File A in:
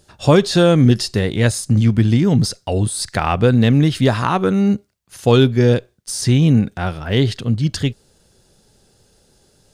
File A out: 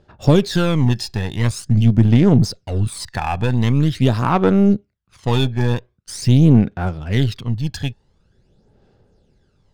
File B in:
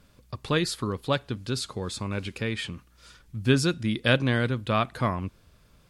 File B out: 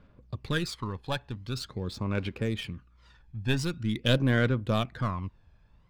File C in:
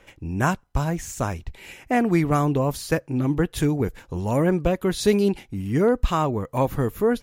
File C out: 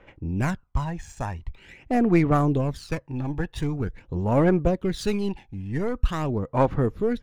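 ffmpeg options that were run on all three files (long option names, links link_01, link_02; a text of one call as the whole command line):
ffmpeg -i in.wav -af "aeval=exprs='0.891*(cos(1*acos(clip(val(0)/0.891,-1,1)))-cos(1*PI/2))+0.0631*(cos(6*acos(clip(val(0)/0.891,-1,1)))-cos(6*PI/2))':channel_layout=same,adynamicsmooth=sensitivity=7:basefreq=2900,aphaser=in_gain=1:out_gain=1:delay=1.2:decay=0.56:speed=0.45:type=sinusoidal,volume=-5.5dB" out.wav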